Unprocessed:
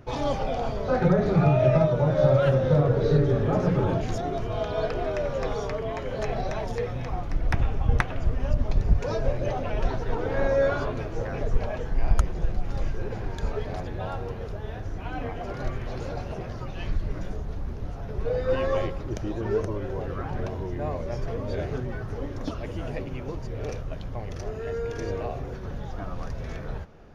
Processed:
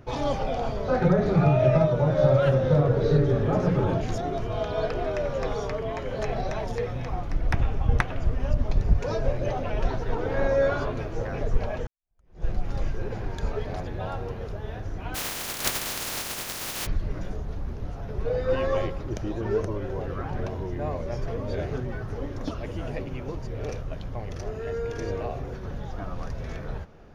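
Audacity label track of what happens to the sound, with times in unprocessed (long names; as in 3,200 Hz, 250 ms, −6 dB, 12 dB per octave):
11.870000	12.460000	fade in exponential
15.140000	16.850000	compressing power law on the bin magnitudes exponent 0.13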